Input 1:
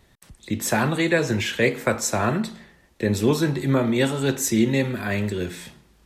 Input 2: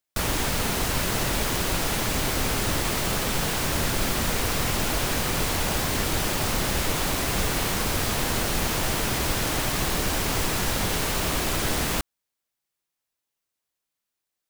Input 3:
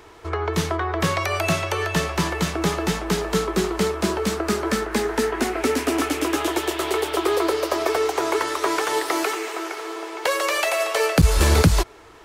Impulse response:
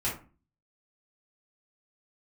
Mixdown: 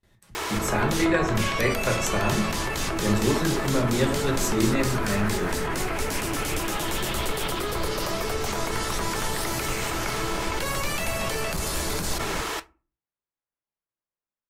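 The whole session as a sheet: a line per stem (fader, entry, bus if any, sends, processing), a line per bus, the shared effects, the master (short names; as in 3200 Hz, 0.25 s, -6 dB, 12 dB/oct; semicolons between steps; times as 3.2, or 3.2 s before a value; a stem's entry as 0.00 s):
-4.5 dB, 0.00 s, send -6.5 dB, gate with hold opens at -47 dBFS
-3.0 dB, 0.40 s, send -12.5 dB, LPF 1600 Hz 12 dB/oct
-5.0 dB, 0.35 s, send -23.5 dB, tilt +2.5 dB/oct; limiter -13 dBFS, peak gain reduction 10.5 dB; fast leveller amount 100%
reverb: on, RT60 0.35 s, pre-delay 4 ms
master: flange 1.8 Hz, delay 2.6 ms, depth 5 ms, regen -78%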